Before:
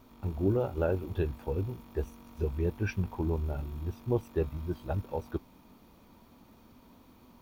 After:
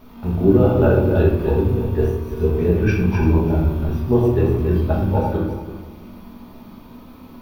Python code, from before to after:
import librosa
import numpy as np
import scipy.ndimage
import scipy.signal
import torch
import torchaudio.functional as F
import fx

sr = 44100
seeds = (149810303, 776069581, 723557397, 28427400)

y = fx.reverse_delay_fb(x, sr, ms=168, feedback_pct=41, wet_db=-5)
y = fx.peak_eq(y, sr, hz=7600.0, db=-10.0, octaves=0.6)
y = fx.room_shoebox(y, sr, seeds[0], volume_m3=210.0, walls='mixed', distance_m=1.4)
y = F.gain(torch.from_numpy(y), 8.0).numpy()